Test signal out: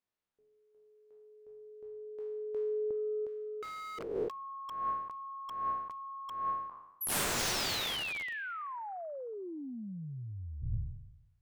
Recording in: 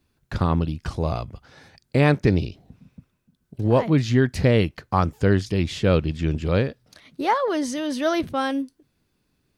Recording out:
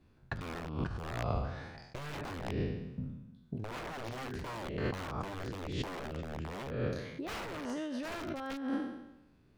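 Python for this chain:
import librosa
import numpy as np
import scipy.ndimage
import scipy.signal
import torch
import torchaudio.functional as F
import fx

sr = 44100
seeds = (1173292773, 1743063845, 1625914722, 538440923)

y = fx.spec_trails(x, sr, decay_s=0.93)
y = (np.mod(10.0 ** (15.0 / 20.0) * y + 1.0, 2.0) - 1.0) / 10.0 ** (15.0 / 20.0)
y = fx.lowpass(y, sr, hz=1500.0, slope=6)
y = fx.over_compress(y, sr, threshold_db=-33.0, ratio=-1.0)
y = y * librosa.db_to_amplitude(-5.5)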